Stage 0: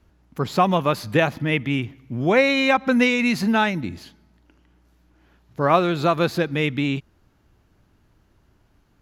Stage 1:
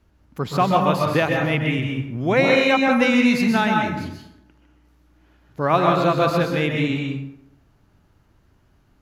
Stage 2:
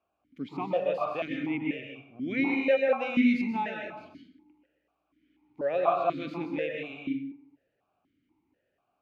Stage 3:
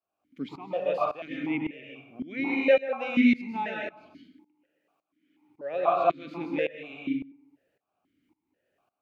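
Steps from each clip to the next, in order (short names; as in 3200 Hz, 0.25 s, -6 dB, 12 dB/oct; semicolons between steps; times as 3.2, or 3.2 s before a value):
plate-style reverb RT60 0.81 s, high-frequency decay 0.55×, pre-delay 0.115 s, DRR 0.5 dB; gain -1.5 dB
vowel sequencer 4.1 Hz
low shelf 110 Hz -7.5 dB; notches 60/120 Hz; tremolo saw up 1.8 Hz, depth 90%; gain +5 dB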